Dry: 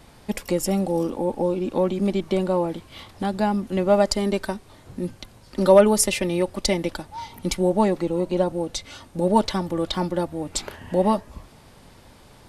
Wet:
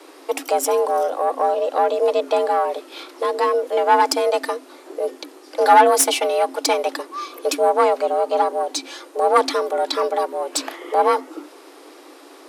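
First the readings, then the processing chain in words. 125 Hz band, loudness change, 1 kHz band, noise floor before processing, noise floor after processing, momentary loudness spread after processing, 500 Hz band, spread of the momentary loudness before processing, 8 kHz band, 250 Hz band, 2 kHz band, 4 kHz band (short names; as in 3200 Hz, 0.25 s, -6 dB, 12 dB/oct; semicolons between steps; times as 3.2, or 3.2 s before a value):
under -40 dB, +3.5 dB, +10.5 dB, -50 dBFS, -45 dBFS, 13 LU, +3.5 dB, 13 LU, +4.0 dB, -10.0 dB, +7.0 dB, +4.0 dB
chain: one diode to ground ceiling -17 dBFS; frequency shift +260 Hz; gain +5.5 dB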